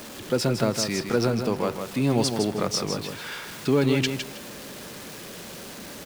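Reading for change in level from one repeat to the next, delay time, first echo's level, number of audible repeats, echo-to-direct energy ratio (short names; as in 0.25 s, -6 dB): -13.0 dB, 0.159 s, -7.0 dB, 2, -7.0 dB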